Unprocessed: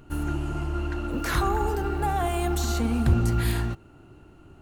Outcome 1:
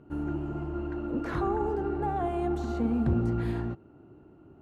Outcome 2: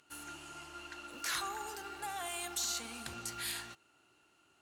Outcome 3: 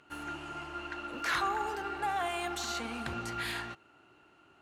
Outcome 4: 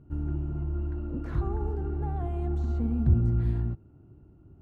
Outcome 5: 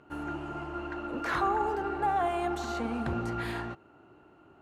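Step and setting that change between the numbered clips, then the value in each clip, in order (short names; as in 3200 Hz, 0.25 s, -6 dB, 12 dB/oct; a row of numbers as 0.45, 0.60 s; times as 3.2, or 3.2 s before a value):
band-pass, frequency: 320, 6500, 2300, 100, 900 Hz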